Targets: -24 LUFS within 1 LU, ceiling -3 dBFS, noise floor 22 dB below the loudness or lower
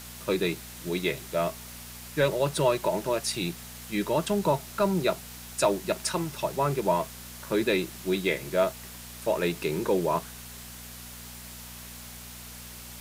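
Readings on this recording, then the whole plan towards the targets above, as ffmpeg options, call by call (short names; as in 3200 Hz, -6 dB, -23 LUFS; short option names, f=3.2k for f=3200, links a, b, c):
hum 60 Hz; harmonics up to 240 Hz; hum level -46 dBFS; noise floor -44 dBFS; noise floor target -50 dBFS; loudness -28.0 LUFS; peak -11.5 dBFS; loudness target -24.0 LUFS
-> -af "bandreject=f=60:t=h:w=4,bandreject=f=120:t=h:w=4,bandreject=f=180:t=h:w=4,bandreject=f=240:t=h:w=4"
-af "afftdn=nr=6:nf=-44"
-af "volume=4dB"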